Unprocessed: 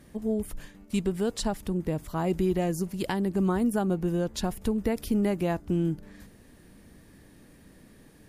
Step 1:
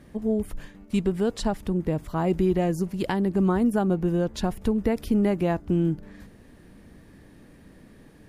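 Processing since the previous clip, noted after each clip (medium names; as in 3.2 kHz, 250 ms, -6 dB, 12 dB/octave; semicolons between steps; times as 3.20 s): treble shelf 4.6 kHz -9.5 dB; trim +3.5 dB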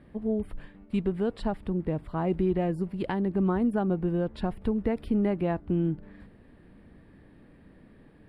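boxcar filter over 7 samples; trim -3.5 dB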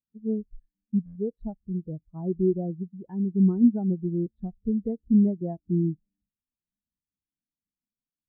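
buffer glitch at 1.05/4.16 s, samples 512, times 8; spectral contrast expander 2.5:1; trim +5 dB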